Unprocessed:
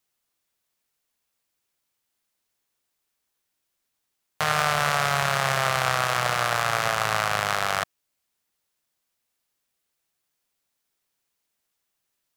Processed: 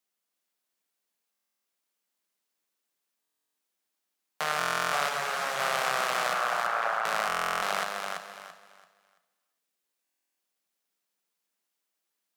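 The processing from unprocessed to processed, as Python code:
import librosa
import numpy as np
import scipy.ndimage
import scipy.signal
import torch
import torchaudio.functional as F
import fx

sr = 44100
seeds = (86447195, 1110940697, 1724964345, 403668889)

y = fx.envelope_sharpen(x, sr, power=2.0, at=(6.33, 7.05))
y = scipy.signal.sosfilt(scipy.signal.ellip(4, 1.0, 50, 180.0, 'highpass', fs=sr, output='sos'), y)
y = fx.echo_feedback(y, sr, ms=336, feedback_pct=27, wet_db=-4.5)
y = fx.rev_gated(y, sr, seeds[0], gate_ms=430, shape='flat', drr_db=12.0)
y = fx.buffer_glitch(y, sr, at_s=(1.31, 3.21, 4.58, 7.27, 10.03), block=1024, repeats=14)
y = fx.ensemble(y, sr, at=(5.08, 5.58), fade=0.02)
y = y * 10.0 ** (-5.0 / 20.0)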